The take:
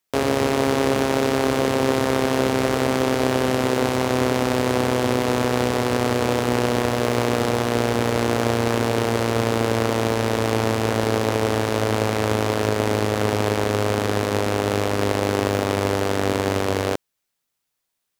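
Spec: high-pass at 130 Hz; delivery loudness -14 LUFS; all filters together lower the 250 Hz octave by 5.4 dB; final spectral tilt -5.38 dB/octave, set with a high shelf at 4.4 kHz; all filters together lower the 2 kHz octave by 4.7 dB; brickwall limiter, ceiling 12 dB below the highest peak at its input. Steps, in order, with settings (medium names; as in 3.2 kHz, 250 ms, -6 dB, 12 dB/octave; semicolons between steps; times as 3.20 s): high-pass 130 Hz; peaking EQ 250 Hz -6 dB; peaking EQ 2 kHz -4.5 dB; treble shelf 4.4 kHz -7.5 dB; trim +18.5 dB; peak limiter -2.5 dBFS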